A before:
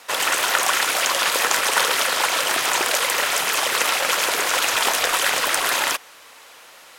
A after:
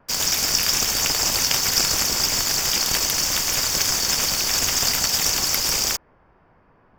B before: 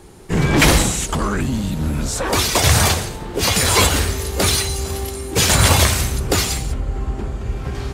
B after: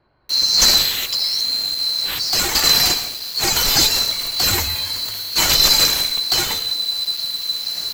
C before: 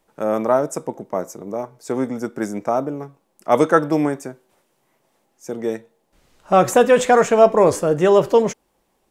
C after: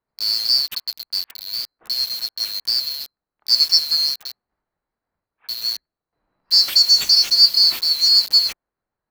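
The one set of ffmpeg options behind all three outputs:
-filter_complex "[0:a]afftfilt=real='real(if(lt(b,736),b+184*(1-2*mod(floor(b/184),2)),b),0)':imag='imag(if(lt(b,736),b+184*(1-2*mod(floor(b/184),2)),b),0)':win_size=2048:overlap=0.75,lowshelf=f=77:g=7,acrossover=split=460|1600[a][b][c];[c]acrusher=bits=4:mix=0:aa=0.000001[d];[a][b][d]amix=inputs=3:normalize=0,volume=-1dB"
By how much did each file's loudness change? 0.0, +2.0, +3.0 LU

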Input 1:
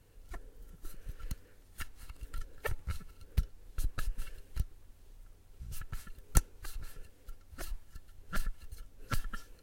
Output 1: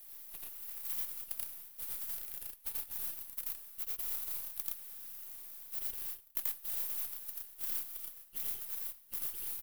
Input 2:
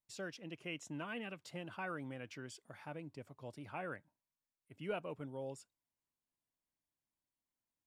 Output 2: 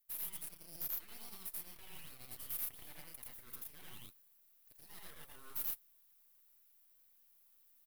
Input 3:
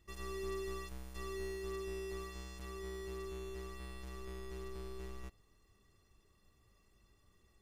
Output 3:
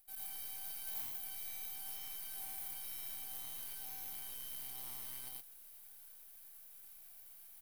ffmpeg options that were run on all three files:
-af "highpass=1.1k,areverse,acompressor=threshold=-58dB:ratio=12,areverse,aeval=exprs='abs(val(0))':c=same,aexciter=amount=11.6:drive=7:freq=9.7k,acrusher=bits=2:mode=log:mix=0:aa=0.000001,aecho=1:1:84.55|116.6:1|0.794,volume=3.5dB"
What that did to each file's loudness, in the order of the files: +4.5, +2.0, +1.5 LU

